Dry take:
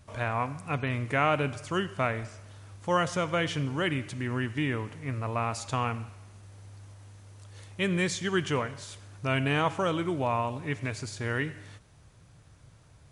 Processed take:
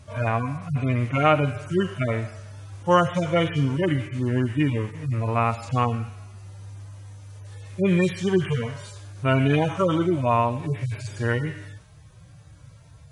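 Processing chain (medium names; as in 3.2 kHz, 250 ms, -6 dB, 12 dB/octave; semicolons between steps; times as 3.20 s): harmonic-percussive separation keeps harmonic; trim +8.5 dB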